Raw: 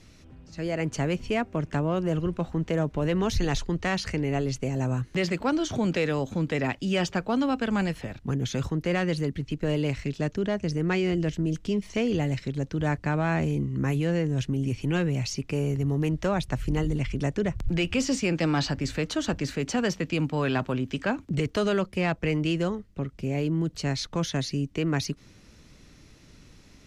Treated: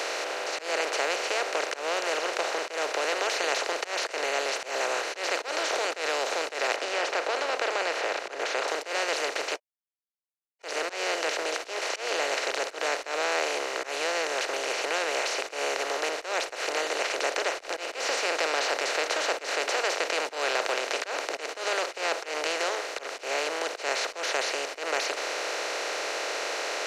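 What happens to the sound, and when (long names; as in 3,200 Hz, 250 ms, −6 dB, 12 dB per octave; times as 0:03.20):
0:06.76–0:08.68: low-pass filter 1,800 Hz
0:09.56–0:10.63: silence
whole clip: compressor on every frequency bin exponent 0.2; inverse Chebyshev high-pass filter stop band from 230 Hz, stop band 40 dB; volume swells 132 ms; level −6.5 dB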